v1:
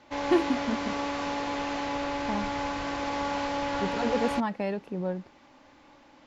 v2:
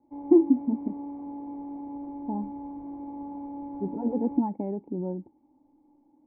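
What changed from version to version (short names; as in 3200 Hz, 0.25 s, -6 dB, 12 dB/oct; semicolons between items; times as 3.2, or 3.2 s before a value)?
speech +11.0 dB; master: add vocal tract filter u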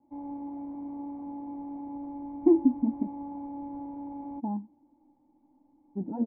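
speech: entry +2.15 s; master: add bell 420 Hz -9 dB 0.37 oct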